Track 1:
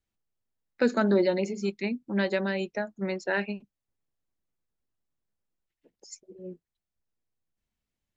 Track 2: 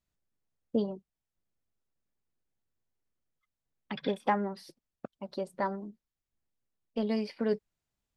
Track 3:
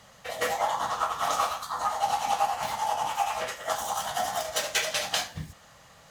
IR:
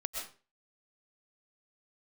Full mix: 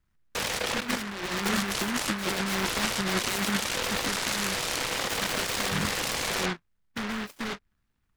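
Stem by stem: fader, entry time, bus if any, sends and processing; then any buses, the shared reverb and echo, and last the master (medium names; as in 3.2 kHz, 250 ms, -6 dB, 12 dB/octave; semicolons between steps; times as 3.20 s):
+2.5 dB, 0.00 s, no send, level-controlled noise filter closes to 620 Hz, open at -23 dBFS
-1.0 dB, 0.00 s, no send, peaking EQ 4.2 kHz -8.5 dB 0.66 oct; compression 12:1, threshold -34 dBFS, peak gain reduction 13 dB; hard clipper -35.5 dBFS, distortion -10 dB
-6.5 dB, 0.35 s, no send, two resonant band-passes 710 Hz, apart 1 oct; level flattener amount 100%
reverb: none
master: bass shelf 410 Hz +5.5 dB; compressor with a negative ratio -28 dBFS, ratio -1; delay time shaken by noise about 1.4 kHz, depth 0.45 ms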